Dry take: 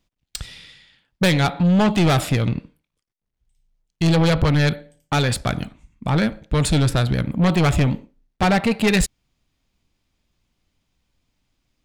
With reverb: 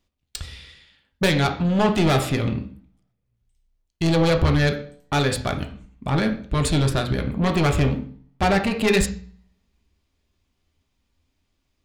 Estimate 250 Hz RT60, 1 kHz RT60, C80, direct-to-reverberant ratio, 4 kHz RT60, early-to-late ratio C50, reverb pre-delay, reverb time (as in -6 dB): 0.55 s, 0.50 s, 16.5 dB, 4.0 dB, 0.45 s, 11.0 dB, 3 ms, 0.50 s